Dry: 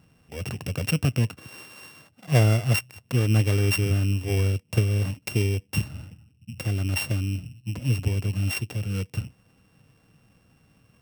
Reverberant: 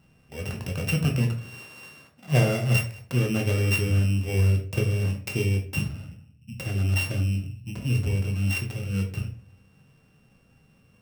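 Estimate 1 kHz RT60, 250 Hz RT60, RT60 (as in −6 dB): 0.40 s, 0.55 s, 0.45 s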